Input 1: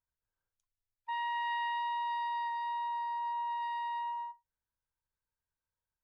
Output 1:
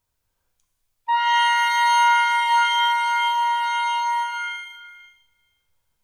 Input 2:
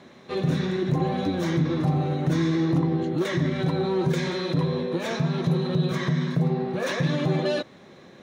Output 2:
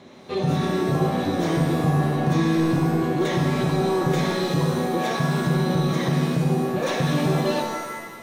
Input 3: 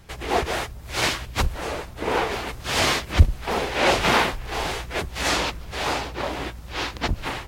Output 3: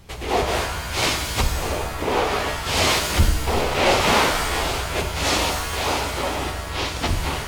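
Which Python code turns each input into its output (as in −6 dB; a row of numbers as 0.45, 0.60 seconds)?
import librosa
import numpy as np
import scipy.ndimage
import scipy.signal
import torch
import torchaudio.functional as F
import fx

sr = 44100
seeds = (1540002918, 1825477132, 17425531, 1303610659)

y = fx.peak_eq(x, sr, hz=1600.0, db=-5.5, octaves=0.57)
y = 10.0 ** (-13.0 / 20.0) * np.tanh(y / 10.0 ** (-13.0 / 20.0))
y = fx.rev_shimmer(y, sr, seeds[0], rt60_s=1.1, semitones=7, shimmer_db=-2, drr_db=5.0)
y = y * 10.0 ** (-22 / 20.0) / np.sqrt(np.mean(np.square(y)))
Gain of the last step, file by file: +15.0, +2.0, +2.5 decibels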